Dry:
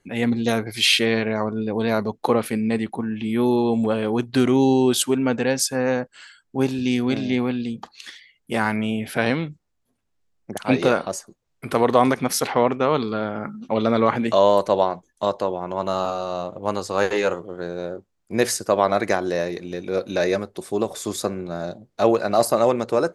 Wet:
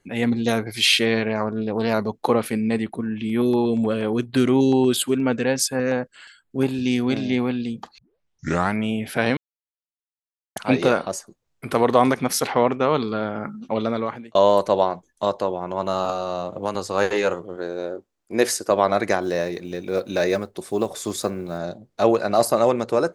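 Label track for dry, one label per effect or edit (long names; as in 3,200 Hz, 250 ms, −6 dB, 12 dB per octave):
1.290000	1.940000	highs frequency-modulated by the lows depth 0.13 ms
2.820000	6.740000	auto-filter notch square 4.2 Hz 840–5,800 Hz
7.980000	7.980000	tape start 0.76 s
9.370000	10.560000	silence
13.610000	14.350000	fade out
16.090000	16.750000	multiband upward and downward compressor depth 100%
17.560000	18.710000	low shelf with overshoot 220 Hz −6.5 dB, Q 1.5
19.210000	21.590000	one scale factor per block 7 bits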